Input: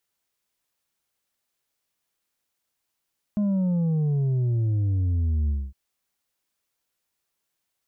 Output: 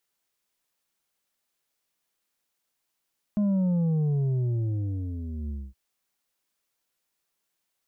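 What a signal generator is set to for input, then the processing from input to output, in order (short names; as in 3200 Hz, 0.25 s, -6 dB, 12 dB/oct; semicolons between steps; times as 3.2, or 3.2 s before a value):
sub drop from 210 Hz, over 2.36 s, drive 4.5 dB, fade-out 0.24 s, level -21 dB
bell 82 Hz -12 dB 0.61 oct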